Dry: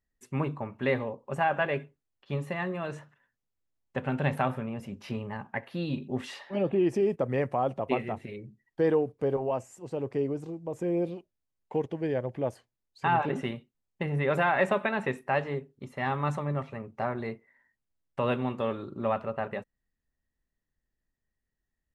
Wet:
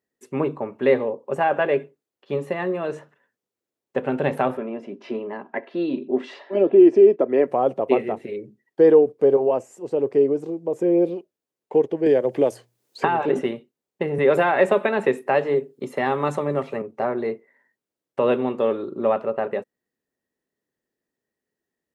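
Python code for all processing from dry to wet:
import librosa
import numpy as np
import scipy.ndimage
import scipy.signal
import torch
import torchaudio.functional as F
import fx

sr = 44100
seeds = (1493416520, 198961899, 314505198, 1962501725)

y = fx.chain(x, sr, fx.highpass(hz=170.0, slope=24),
    fx.air_absorb(metres=140.0),
    fx.comb(ms=3.0, depth=0.42), at=(4.57, 7.48))
y = fx.chain(y, sr, fx.high_shelf(hz=4000.0, db=6.0),
    fx.hum_notches(base_hz=60, count=3),
    fx.band_squash(depth_pct=100), at=(12.06, 13.39))
y = fx.chain(y, sr, fx.high_shelf(hz=4200.0, db=5.5),
    fx.notch(hz=5800.0, q=18.0),
    fx.band_squash(depth_pct=40), at=(14.18, 16.82))
y = scipy.signal.sosfilt(scipy.signal.butter(2, 180.0, 'highpass', fs=sr, output='sos'), y)
y = fx.peak_eq(y, sr, hz=420.0, db=10.5, octaves=1.2)
y = y * librosa.db_to_amplitude(2.5)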